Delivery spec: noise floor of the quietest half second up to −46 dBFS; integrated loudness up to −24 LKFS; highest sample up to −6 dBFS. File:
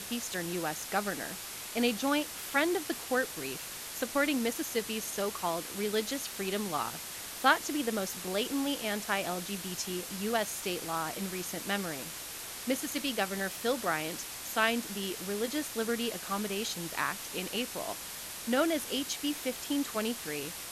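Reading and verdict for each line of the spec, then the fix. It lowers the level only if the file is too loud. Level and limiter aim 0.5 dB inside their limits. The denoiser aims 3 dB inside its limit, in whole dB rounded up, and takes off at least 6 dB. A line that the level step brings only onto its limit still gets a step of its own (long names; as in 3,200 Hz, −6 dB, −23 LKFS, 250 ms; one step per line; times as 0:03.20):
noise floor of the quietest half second −42 dBFS: out of spec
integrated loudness −33.0 LKFS: in spec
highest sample −10.5 dBFS: in spec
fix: broadband denoise 7 dB, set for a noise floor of −42 dBFS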